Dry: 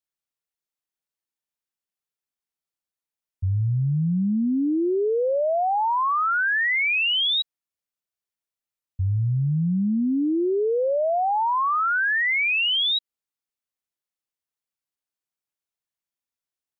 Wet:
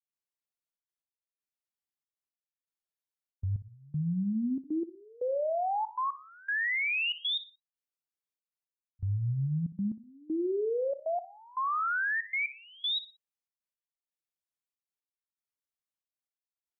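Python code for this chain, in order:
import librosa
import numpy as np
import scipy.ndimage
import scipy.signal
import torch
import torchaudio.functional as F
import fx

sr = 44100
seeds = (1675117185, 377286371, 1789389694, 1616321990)

y = fx.step_gate(x, sr, bpm=118, pattern='.xxxxx.x..', floor_db=-24.0, edge_ms=4.5)
y = fx.echo_feedback(y, sr, ms=60, feedback_pct=33, wet_db=-14.5)
y = F.gain(torch.from_numpy(y), -8.0).numpy()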